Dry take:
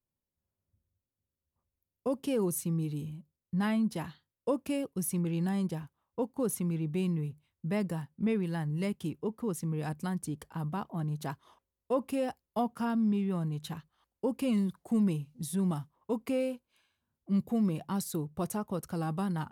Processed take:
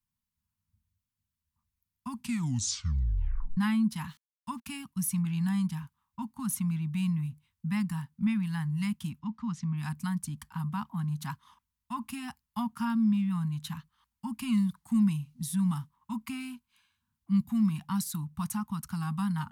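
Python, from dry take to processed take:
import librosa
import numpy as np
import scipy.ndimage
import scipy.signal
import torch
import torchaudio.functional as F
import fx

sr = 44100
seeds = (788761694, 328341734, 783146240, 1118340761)

y = fx.sample_gate(x, sr, floor_db=-57.0, at=(4.08, 4.82))
y = fx.lowpass(y, sr, hz=5900.0, slope=24, at=(9.19, 9.76), fade=0.02)
y = fx.edit(y, sr, fx.tape_stop(start_s=2.1, length_s=1.47), tone=tone)
y = scipy.signal.sosfilt(scipy.signal.cheby1(3, 1.0, [230.0, 940.0], 'bandstop', fs=sr, output='sos'), y)
y = y * librosa.db_to_amplitude(3.0)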